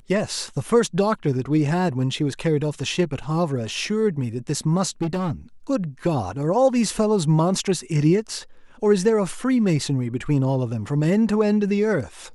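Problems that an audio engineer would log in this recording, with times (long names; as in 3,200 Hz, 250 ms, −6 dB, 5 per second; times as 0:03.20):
0:05.02–0:05.32: clipping −20 dBFS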